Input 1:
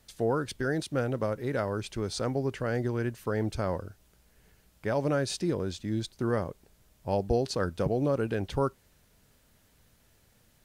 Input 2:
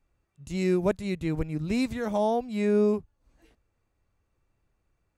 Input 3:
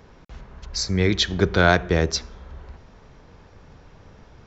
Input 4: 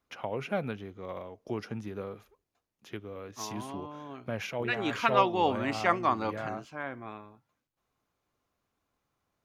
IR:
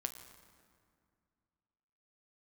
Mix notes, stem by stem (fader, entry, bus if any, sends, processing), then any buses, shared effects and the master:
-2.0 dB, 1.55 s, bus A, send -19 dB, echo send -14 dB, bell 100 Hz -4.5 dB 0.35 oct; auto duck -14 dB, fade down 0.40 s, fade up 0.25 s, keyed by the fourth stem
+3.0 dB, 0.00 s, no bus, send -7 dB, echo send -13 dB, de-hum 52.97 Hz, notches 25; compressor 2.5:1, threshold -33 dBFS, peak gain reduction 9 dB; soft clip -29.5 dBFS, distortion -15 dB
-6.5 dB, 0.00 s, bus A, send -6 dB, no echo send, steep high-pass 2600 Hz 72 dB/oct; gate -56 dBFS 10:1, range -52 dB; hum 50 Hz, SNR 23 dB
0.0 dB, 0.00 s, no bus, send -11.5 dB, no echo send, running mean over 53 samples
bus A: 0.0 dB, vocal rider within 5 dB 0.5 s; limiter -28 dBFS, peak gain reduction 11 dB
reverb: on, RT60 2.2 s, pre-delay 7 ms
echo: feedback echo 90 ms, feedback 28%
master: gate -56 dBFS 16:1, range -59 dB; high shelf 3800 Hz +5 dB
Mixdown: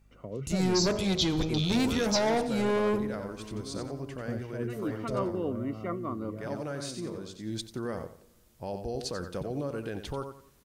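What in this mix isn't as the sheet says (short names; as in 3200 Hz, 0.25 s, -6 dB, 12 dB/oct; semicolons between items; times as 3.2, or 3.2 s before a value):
stem 2: missing compressor 2.5:1, threshold -33 dBFS, peak gain reduction 9 dB; master: missing gate -56 dBFS 16:1, range -59 dB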